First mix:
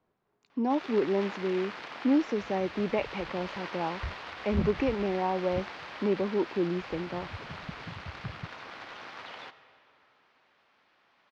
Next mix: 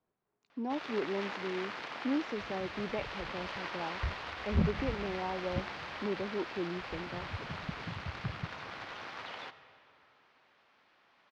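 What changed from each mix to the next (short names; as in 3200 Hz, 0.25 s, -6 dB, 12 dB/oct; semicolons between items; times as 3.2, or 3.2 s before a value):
speech -8.0 dB; second sound: send +8.0 dB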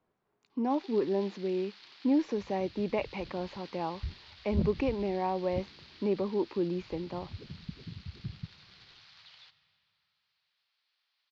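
speech +6.0 dB; first sound: add band-pass 4400 Hz, Q 3.1; second sound: send -8.0 dB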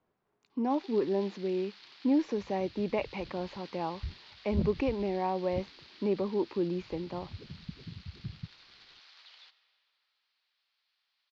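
second sound: send off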